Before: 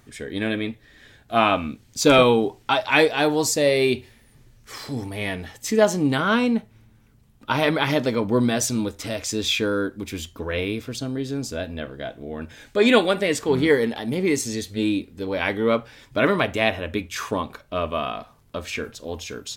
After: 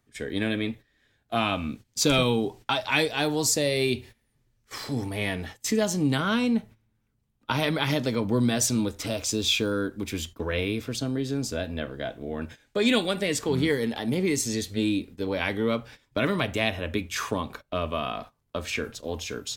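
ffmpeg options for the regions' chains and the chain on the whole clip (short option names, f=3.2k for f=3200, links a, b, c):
-filter_complex "[0:a]asettb=1/sr,asplit=3[a][b][c];[a]atrim=end=9.064[d];[b]atrim=start=9.06:end=9.72,asetpts=PTS-STARTPTS,afade=t=in:d=0.004:c=qsin,afade=t=out:st=0.656:d=0.004:c=qsin,equalizer=f=1.9k:w=4.5:g=-11,acrusher=bits=8:mix=0:aa=0.5[e];[c]atrim=start=9.716[f];[d][e]acrossfade=d=0.004:c1=hsin:c2=qsin[g];[g][f]acrossfade=d=0.004:c1=qsin:c2=hsin,agate=range=-17dB:threshold=-40dB:ratio=16:detection=peak,acrossover=split=220|3000[h][i][j];[i]acompressor=threshold=-27dB:ratio=3[k];[h][k][j]amix=inputs=3:normalize=0"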